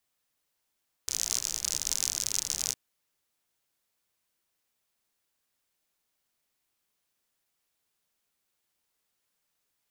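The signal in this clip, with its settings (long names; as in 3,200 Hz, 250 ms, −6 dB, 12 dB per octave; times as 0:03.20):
rain-like ticks over hiss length 1.66 s, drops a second 63, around 6,200 Hz, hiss −17.5 dB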